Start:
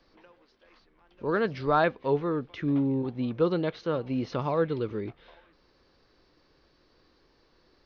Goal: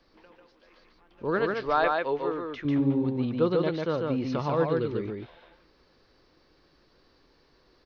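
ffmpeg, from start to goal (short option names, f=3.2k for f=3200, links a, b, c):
-filter_complex "[0:a]asettb=1/sr,asplit=3[a][b][c];[a]atrim=end=1.394[d];[b]atrim=start=1.39:end=2.65,asetpts=PTS-STARTPTS,afade=t=in:d=0.004:c=qsin,afade=t=out:st=1.256:d=0.004:c=qsin,equalizer=f=160:w=0.95:g=-15[e];[c]atrim=start=2.646[f];[d][e]acrossfade=d=0.004:c1=hsin:c2=qsin[g];[g][f]acrossfade=d=0.004:c1=qsin:c2=hsin,aecho=1:1:145:0.708"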